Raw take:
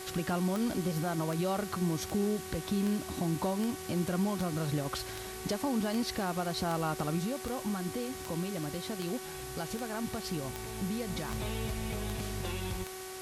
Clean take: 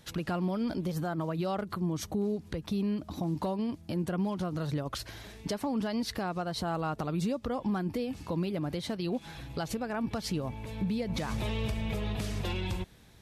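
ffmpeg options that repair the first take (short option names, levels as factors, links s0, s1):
-af "adeclick=t=4,bandreject=f=375.4:t=h:w=4,bandreject=f=750.8:t=h:w=4,bandreject=f=1126.2:t=h:w=4,bandreject=f=1501.6:t=h:w=4,bandreject=f=1877:t=h:w=4,bandreject=f=2252.4:t=h:w=4,afwtdn=0.0056,asetnsamples=n=441:p=0,asendcmd='7.18 volume volume 4dB',volume=1"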